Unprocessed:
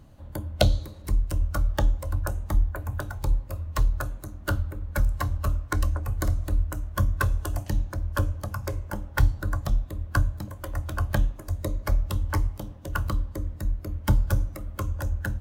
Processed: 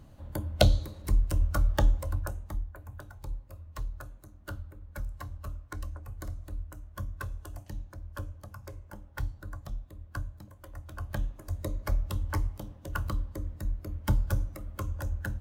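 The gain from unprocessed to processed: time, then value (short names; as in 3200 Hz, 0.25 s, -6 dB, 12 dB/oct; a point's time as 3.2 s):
1.99 s -1 dB
2.66 s -13.5 dB
10.84 s -13.5 dB
11.53 s -5 dB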